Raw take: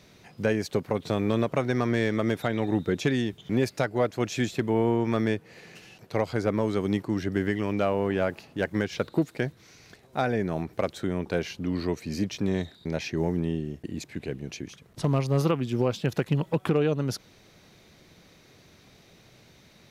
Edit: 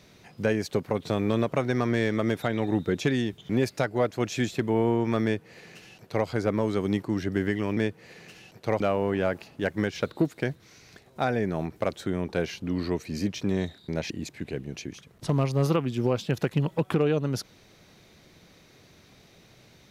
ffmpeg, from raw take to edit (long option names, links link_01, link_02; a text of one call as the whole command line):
ffmpeg -i in.wav -filter_complex "[0:a]asplit=4[link_01][link_02][link_03][link_04];[link_01]atrim=end=7.772[link_05];[link_02]atrim=start=5.238:end=6.272[link_06];[link_03]atrim=start=7.768:end=13.072[link_07];[link_04]atrim=start=13.848[link_08];[link_05][link_06]acrossfade=duration=0.004:curve1=hsin:curve2=hsin[link_09];[link_09][link_07]acrossfade=duration=0.004:curve1=hsin:curve2=hsin[link_10];[link_10][link_08]acrossfade=duration=0.004:curve1=hsin:curve2=hsin" out.wav